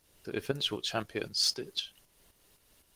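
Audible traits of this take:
tremolo saw up 3.9 Hz, depth 60%
Opus

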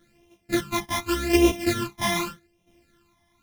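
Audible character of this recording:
a buzz of ramps at a fixed pitch in blocks of 128 samples
phaser sweep stages 12, 0.85 Hz, lowest notch 450–1,500 Hz
tremolo saw down 0.75 Hz, depth 65%
a shimmering, thickened sound

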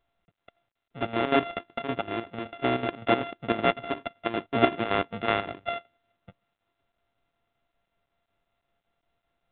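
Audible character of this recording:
a buzz of ramps at a fixed pitch in blocks of 64 samples
chopped level 5.3 Hz, depth 65%, duty 65%
mu-law

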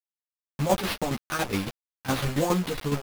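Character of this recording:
a quantiser's noise floor 6 bits, dither none
tremolo saw down 7.2 Hz, depth 75%
aliases and images of a low sample rate 7,500 Hz, jitter 20%
a shimmering, thickened sound

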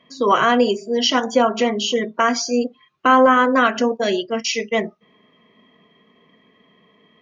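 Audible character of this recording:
background noise floor −58 dBFS
spectral slope −3.0 dB per octave

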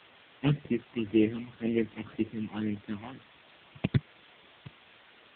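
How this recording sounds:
aliases and images of a low sample rate 2,400 Hz, jitter 20%
phaser sweep stages 8, 1.9 Hz, lowest notch 460–1,400 Hz
a quantiser's noise floor 8 bits, dither triangular
AMR narrowband

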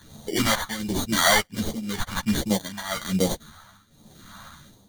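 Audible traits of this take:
aliases and images of a low sample rate 2,600 Hz, jitter 0%
phaser sweep stages 2, 1.3 Hz, lowest notch 340–1,400 Hz
tremolo triangle 0.97 Hz, depth 90%
a shimmering, thickened sound

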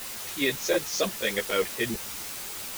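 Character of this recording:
tremolo saw up 3.6 Hz, depth 70%
a quantiser's noise floor 6 bits, dither triangular
a shimmering, thickened sound

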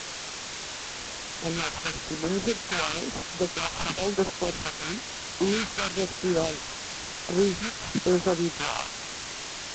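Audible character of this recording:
aliases and images of a low sample rate 1,900 Hz, jitter 20%
phaser sweep stages 2, 1 Hz, lowest notch 330–3,500 Hz
a quantiser's noise floor 6 bits, dither triangular
G.722

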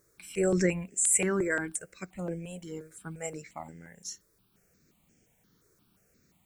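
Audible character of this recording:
a quantiser's noise floor 12 bits, dither triangular
notches that jump at a steady rate 5.7 Hz 790–3,900 Hz

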